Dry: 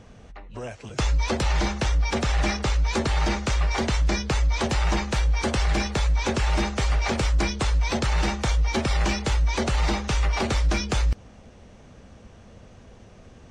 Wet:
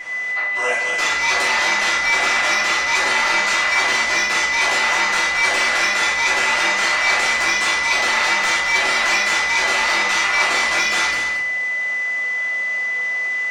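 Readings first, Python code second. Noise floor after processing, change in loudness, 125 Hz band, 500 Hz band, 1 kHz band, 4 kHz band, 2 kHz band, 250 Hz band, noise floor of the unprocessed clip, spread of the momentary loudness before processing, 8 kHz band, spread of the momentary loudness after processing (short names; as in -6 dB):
-22 dBFS, +8.5 dB, under -20 dB, +2.5 dB, +10.0 dB, +11.0 dB, +17.5 dB, -7.5 dB, -49 dBFS, 1 LU, +10.5 dB, 4 LU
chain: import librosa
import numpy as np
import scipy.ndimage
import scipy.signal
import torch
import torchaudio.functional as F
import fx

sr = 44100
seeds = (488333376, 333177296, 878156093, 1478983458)

p1 = scipy.signal.sosfilt(scipy.signal.butter(2, 940.0, 'highpass', fs=sr, output='sos'), x)
p2 = fx.over_compress(p1, sr, threshold_db=-41.0, ratio=-1.0)
p3 = p1 + F.gain(torch.from_numpy(p2), -2.0).numpy()
p4 = 10.0 ** (-20.0 / 20.0) * np.tanh(p3 / 10.0 ** (-20.0 / 20.0))
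p5 = p4 + 10.0 ** (-33.0 / 20.0) * np.sin(2.0 * np.pi * 2000.0 * np.arange(len(p4)) / sr)
p6 = p5 + 10.0 ** (-8.0 / 20.0) * np.pad(p5, (int(224 * sr / 1000.0), 0))[:len(p5)]
y = fx.room_shoebox(p6, sr, seeds[0], volume_m3=150.0, walls='mixed', distance_m=3.1)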